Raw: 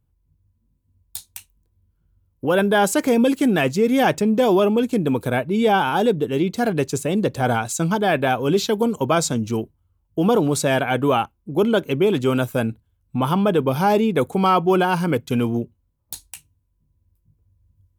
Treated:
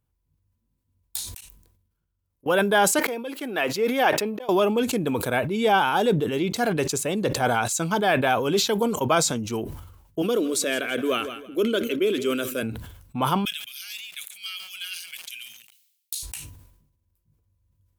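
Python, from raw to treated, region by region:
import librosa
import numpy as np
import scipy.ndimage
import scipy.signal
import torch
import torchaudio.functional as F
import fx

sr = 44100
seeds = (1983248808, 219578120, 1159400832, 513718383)

y = fx.chain(x, sr, fx.level_steps(step_db=23),
    fx.peak_eq(hz=9900.0, db=2.5, octaves=2.7), at=(1.29, 2.48))
y = fx.chain(y, sr, fx.highpass(hz=320.0, slope=12),
    fx.auto_swell(attack_ms=683.0),
    fx.peak_eq(hz=7400.0, db=-10.5, octaves=1.0), at=(2.99, 4.49))
y = fx.chain(y, sr, fx.fixed_phaser(hz=350.0, stages=4),
    fx.echo_feedback(ms=165, feedback_pct=43, wet_db=-17.5), at=(10.22, 12.63))
y = fx.chain(y, sr, fx.cheby2_highpass(hz=1000.0, order=4, stop_db=50),
    fx.echo_crushed(ms=139, feedback_pct=55, bits=7, wet_db=-14.5), at=(13.45, 16.23))
y = fx.low_shelf(y, sr, hz=370.0, db=-9.5)
y = fx.sustainer(y, sr, db_per_s=62.0)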